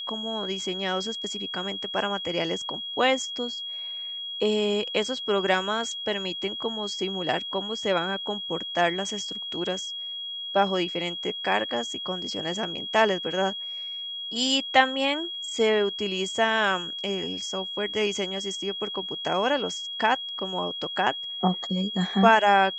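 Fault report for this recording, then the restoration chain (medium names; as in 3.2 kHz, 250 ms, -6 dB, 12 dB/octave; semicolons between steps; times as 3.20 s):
whine 3.3 kHz -32 dBFS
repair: band-stop 3.3 kHz, Q 30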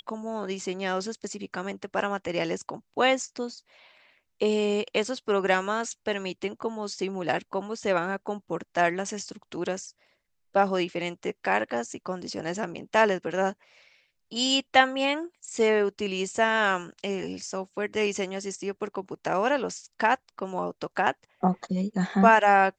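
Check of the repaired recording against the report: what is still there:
nothing left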